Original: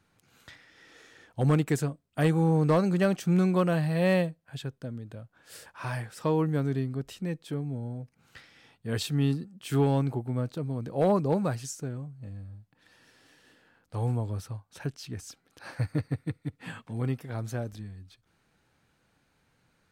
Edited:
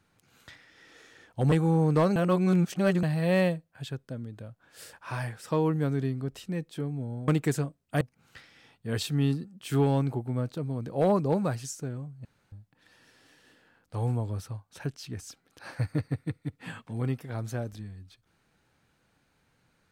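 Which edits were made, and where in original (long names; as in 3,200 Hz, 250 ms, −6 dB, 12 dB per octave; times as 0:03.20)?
0:01.52–0:02.25: move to 0:08.01
0:02.89–0:03.76: reverse
0:12.25–0:12.52: fill with room tone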